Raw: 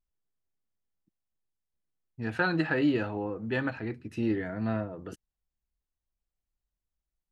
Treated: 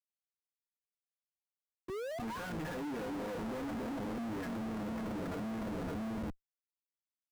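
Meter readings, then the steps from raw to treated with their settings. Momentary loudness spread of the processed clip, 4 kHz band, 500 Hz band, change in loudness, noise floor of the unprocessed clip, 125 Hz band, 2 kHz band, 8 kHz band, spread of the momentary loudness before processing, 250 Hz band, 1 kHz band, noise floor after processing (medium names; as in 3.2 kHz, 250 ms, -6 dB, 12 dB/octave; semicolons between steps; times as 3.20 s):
2 LU, -6.5 dB, -6.0 dB, -9.0 dB, under -85 dBFS, -8.5 dB, -13.0 dB, no reading, 12 LU, -6.5 dB, -3.5 dB, under -85 dBFS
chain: LFO low-pass saw up 0.33 Hz 870–4400 Hz; on a send: echo whose repeats swap between lows and highs 280 ms, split 1.1 kHz, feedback 59%, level -5.5 dB; on the sum: painted sound rise, 1.88–2.52 s, 350–1500 Hz -36 dBFS; gate -56 dBFS, range -8 dB; compression 2.5:1, threshold -46 dBFS, peak gain reduction 17 dB; distance through air 450 m; band-stop 700 Hz, Q 21; comb 4.2 ms, depth 77%; peak limiter -37 dBFS, peak gain reduction 8.5 dB; Schmitt trigger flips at -57.5 dBFS; treble shelf 2 kHz -11 dB; three bands expanded up and down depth 40%; trim +10 dB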